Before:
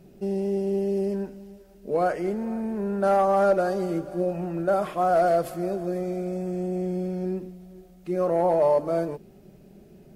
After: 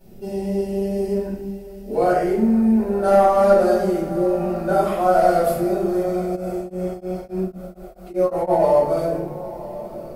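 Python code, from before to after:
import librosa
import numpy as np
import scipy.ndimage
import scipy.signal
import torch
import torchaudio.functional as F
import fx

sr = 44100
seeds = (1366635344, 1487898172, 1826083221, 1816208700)

y = fx.high_shelf(x, sr, hz=9900.0, db=11.0)
y = fx.echo_diffused(y, sr, ms=1044, feedback_pct=49, wet_db=-15.5)
y = fx.room_shoebox(y, sr, seeds[0], volume_m3=130.0, walls='mixed', distance_m=4.4)
y = fx.tremolo_abs(y, sr, hz=fx.line((6.35, 2.6), (8.58, 6.8)), at=(6.35, 8.58), fade=0.02)
y = y * 10.0 ** (-8.5 / 20.0)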